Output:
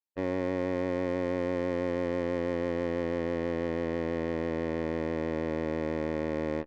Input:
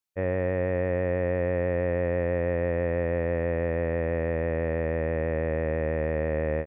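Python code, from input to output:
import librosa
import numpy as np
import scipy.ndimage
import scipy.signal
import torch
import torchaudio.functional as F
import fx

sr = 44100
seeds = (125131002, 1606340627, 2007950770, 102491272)

y = fx.small_body(x, sr, hz=(290.0, 880.0), ring_ms=20, db=12)
y = 10.0 ** (-18.0 / 20.0) * np.tanh(y / 10.0 ** (-18.0 / 20.0))
y = fx.cheby_harmonics(y, sr, harmonics=(2, 3, 6), levels_db=(-16, -12, -31), full_scale_db=-18.0)
y = F.gain(torch.from_numpy(y), -2.0).numpy()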